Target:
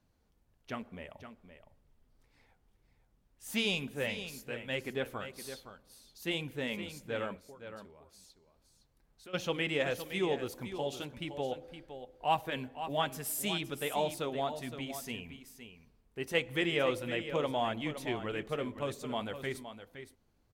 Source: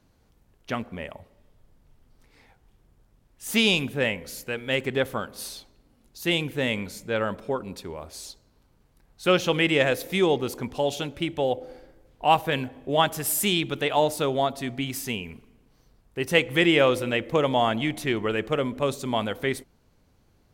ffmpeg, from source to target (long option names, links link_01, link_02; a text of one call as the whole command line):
ffmpeg -i in.wav -filter_complex "[0:a]asplit=3[link_01][link_02][link_03];[link_01]afade=type=out:start_time=7.37:duration=0.02[link_04];[link_02]acompressor=threshold=-49dB:ratio=2.5,afade=type=in:start_time=7.37:duration=0.02,afade=type=out:start_time=9.33:duration=0.02[link_05];[link_03]afade=type=in:start_time=9.33:duration=0.02[link_06];[link_04][link_05][link_06]amix=inputs=3:normalize=0,flanger=delay=1.1:depth=3.8:regen=-57:speed=1.7:shape=sinusoidal,aecho=1:1:515:0.299,volume=-6.5dB" out.wav